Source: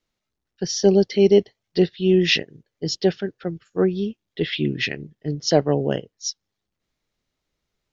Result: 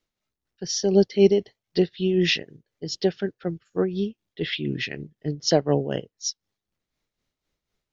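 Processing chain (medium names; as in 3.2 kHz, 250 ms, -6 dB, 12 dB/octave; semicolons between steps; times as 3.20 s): tremolo 4 Hz, depth 60%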